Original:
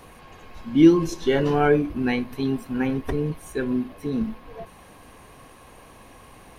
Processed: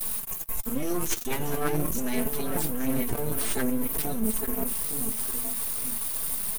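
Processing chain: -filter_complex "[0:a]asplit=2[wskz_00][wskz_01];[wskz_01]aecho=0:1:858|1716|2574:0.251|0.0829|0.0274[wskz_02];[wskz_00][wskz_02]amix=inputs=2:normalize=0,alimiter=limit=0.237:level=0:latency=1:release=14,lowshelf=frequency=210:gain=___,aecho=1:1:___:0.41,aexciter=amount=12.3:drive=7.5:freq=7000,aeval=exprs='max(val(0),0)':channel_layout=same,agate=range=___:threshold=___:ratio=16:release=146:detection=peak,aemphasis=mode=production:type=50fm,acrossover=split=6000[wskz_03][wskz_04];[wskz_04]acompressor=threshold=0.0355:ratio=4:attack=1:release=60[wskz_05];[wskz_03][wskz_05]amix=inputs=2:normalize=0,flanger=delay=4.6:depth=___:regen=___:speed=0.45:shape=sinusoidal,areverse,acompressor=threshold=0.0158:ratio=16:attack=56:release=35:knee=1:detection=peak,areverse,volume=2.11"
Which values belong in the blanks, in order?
6.5, 4.5, 0.158, 0.00501, 4.2, 38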